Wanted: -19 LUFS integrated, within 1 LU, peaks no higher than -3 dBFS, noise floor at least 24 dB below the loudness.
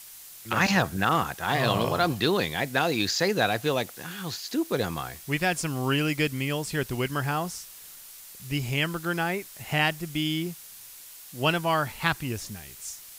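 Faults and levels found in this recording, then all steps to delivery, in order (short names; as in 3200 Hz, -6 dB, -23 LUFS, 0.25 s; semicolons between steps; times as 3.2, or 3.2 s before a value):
noise floor -46 dBFS; noise floor target -51 dBFS; loudness -27.0 LUFS; peak -7.5 dBFS; loudness target -19.0 LUFS
-> denoiser 6 dB, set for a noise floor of -46 dBFS; gain +8 dB; limiter -3 dBFS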